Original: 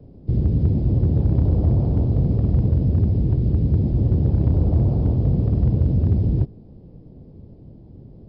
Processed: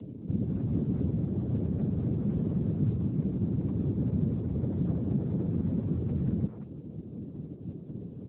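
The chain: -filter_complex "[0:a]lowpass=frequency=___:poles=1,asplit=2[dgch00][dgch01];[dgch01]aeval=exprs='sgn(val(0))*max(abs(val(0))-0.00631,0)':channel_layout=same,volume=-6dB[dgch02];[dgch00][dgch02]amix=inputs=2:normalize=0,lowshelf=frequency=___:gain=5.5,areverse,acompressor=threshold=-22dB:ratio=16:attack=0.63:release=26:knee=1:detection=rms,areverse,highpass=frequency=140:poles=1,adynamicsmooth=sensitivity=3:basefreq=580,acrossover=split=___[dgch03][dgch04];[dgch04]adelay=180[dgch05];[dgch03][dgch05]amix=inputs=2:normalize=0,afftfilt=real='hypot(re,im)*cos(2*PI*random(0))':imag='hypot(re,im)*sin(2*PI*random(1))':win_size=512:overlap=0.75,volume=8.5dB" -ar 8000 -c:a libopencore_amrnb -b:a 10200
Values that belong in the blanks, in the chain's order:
1000, 260, 690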